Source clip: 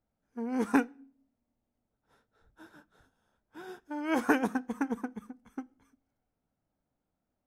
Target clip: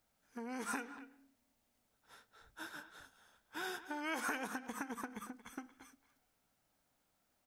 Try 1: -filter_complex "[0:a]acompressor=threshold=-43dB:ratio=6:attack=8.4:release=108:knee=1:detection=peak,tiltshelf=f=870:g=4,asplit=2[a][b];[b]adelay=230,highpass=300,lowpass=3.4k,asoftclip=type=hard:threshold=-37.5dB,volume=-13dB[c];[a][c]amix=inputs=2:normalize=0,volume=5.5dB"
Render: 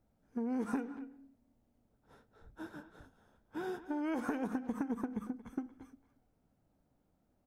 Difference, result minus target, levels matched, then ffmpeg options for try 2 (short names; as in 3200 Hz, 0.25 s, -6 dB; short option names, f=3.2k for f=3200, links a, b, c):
1000 Hz band -5.0 dB
-filter_complex "[0:a]acompressor=threshold=-43dB:ratio=6:attack=8.4:release=108:knee=1:detection=peak,tiltshelf=f=870:g=-8,asplit=2[a][b];[b]adelay=230,highpass=300,lowpass=3.4k,asoftclip=type=hard:threshold=-37.5dB,volume=-13dB[c];[a][c]amix=inputs=2:normalize=0,volume=5.5dB"